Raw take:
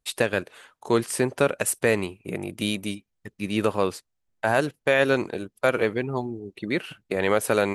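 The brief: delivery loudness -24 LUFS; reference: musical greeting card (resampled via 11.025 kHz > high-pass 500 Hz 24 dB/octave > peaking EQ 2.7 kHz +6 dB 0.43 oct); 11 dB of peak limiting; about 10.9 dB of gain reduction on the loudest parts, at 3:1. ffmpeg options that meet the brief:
-af "acompressor=threshold=0.0282:ratio=3,alimiter=level_in=1.06:limit=0.0631:level=0:latency=1,volume=0.944,aresample=11025,aresample=44100,highpass=f=500:w=0.5412,highpass=f=500:w=1.3066,equalizer=f=2700:t=o:w=0.43:g=6,volume=7.08"

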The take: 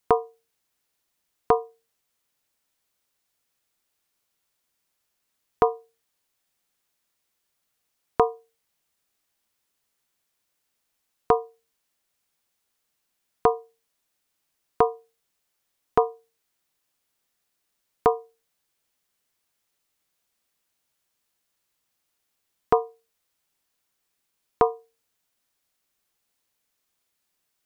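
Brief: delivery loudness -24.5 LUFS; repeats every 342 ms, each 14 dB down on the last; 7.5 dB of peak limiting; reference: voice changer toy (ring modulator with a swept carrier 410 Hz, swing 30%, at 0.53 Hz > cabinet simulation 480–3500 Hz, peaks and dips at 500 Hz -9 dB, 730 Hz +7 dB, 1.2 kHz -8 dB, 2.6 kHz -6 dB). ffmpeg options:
-af "alimiter=limit=0.282:level=0:latency=1,aecho=1:1:342|684:0.2|0.0399,aeval=exprs='val(0)*sin(2*PI*410*n/s+410*0.3/0.53*sin(2*PI*0.53*n/s))':c=same,highpass=480,equalizer=f=500:t=q:w=4:g=-9,equalizer=f=730:t=q:w=4:g=7,equalizer=f=1200:t=q:w=4:g=-8,equalizer=f=2600:t=q:w=4:g=-6,lowpass=f=3500:w=0.5412,lowpass=f=3500:w=1.3066,volume=4.22"

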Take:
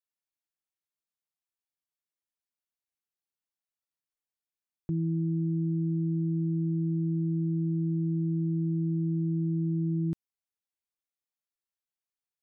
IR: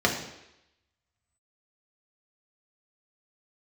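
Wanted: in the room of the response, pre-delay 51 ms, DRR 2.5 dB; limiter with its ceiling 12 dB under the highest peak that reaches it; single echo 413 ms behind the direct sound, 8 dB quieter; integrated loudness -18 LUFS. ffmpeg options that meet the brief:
-filter_complex "[0:a]alimiter=level_in=3.98:limit=0.0631:level=0:latency=1,volume=0.251,aecho=1:1:413:0.398,asplit=2[s0][s1];[1:a]atrim=start_sample=2205,adelay=51[s2];[s1][s2]afir=irnorm=-1:irlink=0,volume=0.133[s3];[s0][s3]amix=inputs=2:normalize=0,volume=17.8"

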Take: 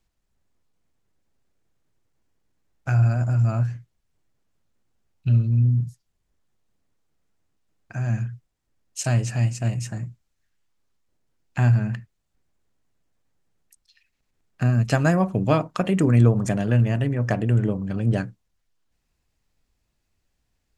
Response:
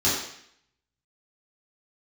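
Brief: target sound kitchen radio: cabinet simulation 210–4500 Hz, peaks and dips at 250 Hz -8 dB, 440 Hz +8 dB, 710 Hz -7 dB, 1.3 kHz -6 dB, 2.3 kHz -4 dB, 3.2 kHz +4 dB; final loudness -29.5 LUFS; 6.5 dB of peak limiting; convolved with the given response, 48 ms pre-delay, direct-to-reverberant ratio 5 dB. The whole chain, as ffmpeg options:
-filter_complex "[0:a]alimiter=limit=0.251:level=0:latency=1,asplit=2[s0][s1];[1:a]atrim=start_sample=2205,adelay=48[s2];[s1][s2]afir=irnorm=-1:irlink=0,volume=0.112[s3];[s0][s3]amix=inputs=2:normalize=0,highpass=210,equalizer=f=250:t=q:w=4:g=-8,equalizer=f=440:t=q:w=4:g=8,equalizer=f=710:t=q:w=4:g=-7,equalizer=f=1300:t=q:w=4:g=-6,equalizer=f=2300:t=q:w=4:g=-4,equalizer=f=3200:t=q:w=4:g=4,lowpass=f=4500:w=0.5412,lowpass=f=4500:w=1.3066,volume=0.794"

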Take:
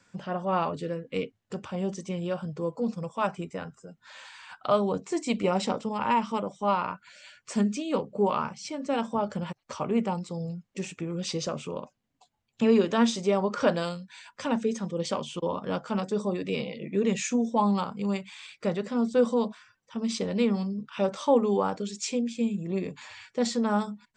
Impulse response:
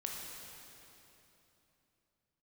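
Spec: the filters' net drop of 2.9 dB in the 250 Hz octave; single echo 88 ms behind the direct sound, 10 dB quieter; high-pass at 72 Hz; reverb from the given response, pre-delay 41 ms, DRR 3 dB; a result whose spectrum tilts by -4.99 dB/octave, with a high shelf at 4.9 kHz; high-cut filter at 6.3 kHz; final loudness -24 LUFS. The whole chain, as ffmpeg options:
-filter_complex "[0:a]highpass=72,lowpass=6300,equalizer=f=250:t=o:g=-3.5,highshelf=f=4900:g=6,aecho=1:1:88:0.316,asplit=2[s0][s1];[1:a]atrim=start_sample=2205,adelay=41[s2];[s1][s2]afir=irnorm=-1:irlink=0,volume=0.668[s3];[s0][s3]amix=inputs=2:normalize=0,volume=1.58"

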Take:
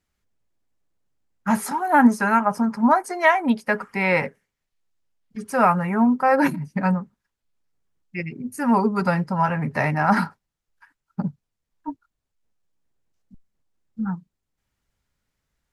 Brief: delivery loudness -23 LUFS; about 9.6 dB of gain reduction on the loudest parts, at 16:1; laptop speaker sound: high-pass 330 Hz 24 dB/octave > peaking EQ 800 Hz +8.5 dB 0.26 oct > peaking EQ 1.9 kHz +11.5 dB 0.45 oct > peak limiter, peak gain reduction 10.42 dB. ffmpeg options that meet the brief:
-af "acompressor=threshold=0.126:ratio=16,highpass=f=330:w=0.5412,highpass=f=330:w=1.3066,equalizer=f=800:t=o:w=0.26:g=8.5,equalizer=f=1900:t=o:w=0.45:g=11.5,volume=1.33,alimiter=limit=0.251:level=0:latency=1"

